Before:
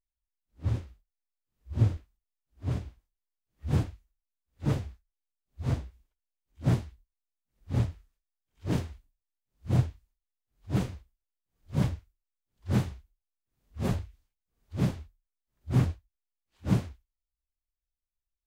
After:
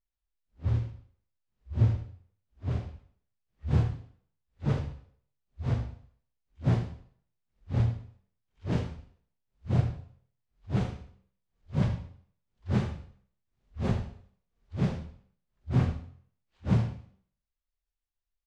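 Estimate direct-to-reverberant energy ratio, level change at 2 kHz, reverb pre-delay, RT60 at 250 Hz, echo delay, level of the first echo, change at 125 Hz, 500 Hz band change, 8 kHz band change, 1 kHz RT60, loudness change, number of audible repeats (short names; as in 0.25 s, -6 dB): 5.5 dB, 0.0 dB, 18 ms, 0.55 s, 78 ms, -11.5 dB, +1.0 dB, +0.5 dB, n/a, 0.55 s, 0.0 dB, 1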